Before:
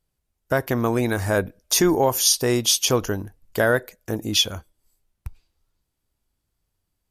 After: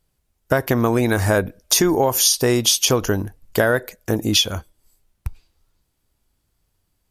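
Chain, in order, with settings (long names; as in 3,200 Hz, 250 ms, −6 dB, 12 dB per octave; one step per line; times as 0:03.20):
downward compressor, threshold −20 dBFS, peak gain reduction 7 dB
level +7 dB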